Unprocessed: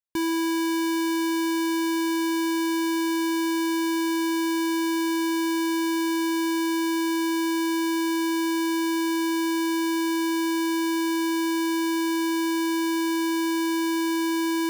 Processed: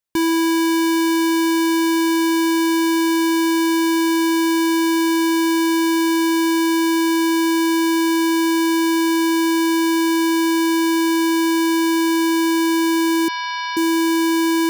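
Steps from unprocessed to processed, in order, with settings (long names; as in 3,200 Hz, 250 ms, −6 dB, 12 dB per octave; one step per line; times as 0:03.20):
0:13.28–0:13.77: linear-phase brick-wall band-pass 400–5,700 Hz
level +7.5 dB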